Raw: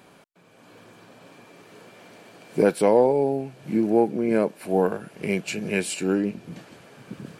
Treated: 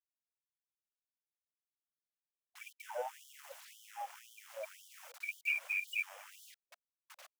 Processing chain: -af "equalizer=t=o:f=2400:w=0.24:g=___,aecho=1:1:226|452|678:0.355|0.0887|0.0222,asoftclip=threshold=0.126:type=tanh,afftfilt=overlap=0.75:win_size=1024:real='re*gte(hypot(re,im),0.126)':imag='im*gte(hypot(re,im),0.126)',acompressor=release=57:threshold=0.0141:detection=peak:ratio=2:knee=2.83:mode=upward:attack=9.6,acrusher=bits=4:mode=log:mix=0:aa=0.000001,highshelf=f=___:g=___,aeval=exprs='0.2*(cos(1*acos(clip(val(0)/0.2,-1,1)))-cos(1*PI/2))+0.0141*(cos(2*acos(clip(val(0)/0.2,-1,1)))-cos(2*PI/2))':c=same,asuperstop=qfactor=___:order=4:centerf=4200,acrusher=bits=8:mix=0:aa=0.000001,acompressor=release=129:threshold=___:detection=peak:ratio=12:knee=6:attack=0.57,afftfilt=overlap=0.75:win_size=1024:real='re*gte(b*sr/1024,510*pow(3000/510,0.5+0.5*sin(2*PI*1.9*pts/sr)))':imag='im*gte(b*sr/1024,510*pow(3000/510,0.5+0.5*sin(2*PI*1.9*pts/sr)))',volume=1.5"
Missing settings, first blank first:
11, 3300, -9.5, 2.4, 0.0355